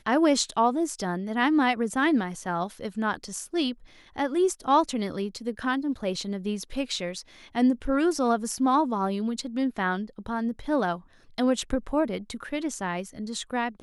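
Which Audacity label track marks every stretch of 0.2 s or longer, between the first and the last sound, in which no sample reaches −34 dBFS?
3.730000	4.160000	silence
7.210000	7.550000	silence
10.970000	11.380000	silence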